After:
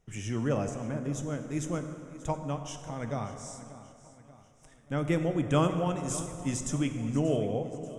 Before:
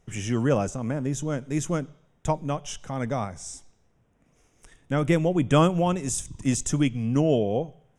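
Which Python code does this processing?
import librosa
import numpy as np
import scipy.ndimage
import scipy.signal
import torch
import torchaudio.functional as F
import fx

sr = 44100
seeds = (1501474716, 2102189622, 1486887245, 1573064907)

p1 = x + fx.echo_feedback(x, sr, ms=585, feedback_pct=50, wet_db=-16.5, dry=0)
p2 = fx.rev_plate(p1, sr, seeds[0], rt60_s=2.7, hf_ratio=0.55, predelay_ms=0, drr_db=7.0)
y = p2 * 10.0 ** (-7.0 / 20.0)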